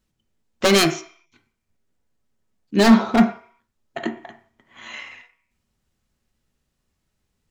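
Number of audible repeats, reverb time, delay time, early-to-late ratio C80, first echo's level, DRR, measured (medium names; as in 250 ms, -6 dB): no echo, 0.50 s, no echo, 15.0 dB, no echo, 5.0 dB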